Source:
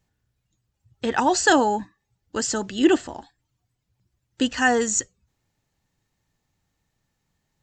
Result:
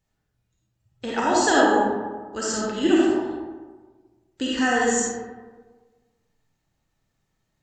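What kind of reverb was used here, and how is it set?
comb and all-pass reverb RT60 1.4 s, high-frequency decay 0.45×, pre-delay 10 ms, DRR −5.5 dB
level −6 dB

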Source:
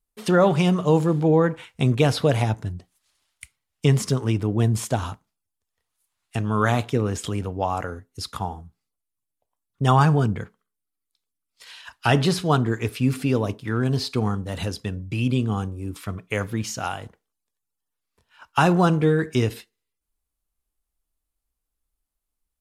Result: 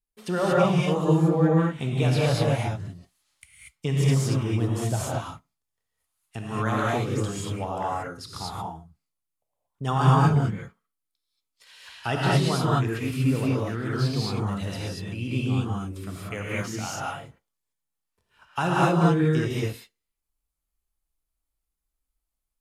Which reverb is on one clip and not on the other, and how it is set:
reverb whose tail is shaped and stops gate 260 ms rising, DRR −6 dB
level −9 dB

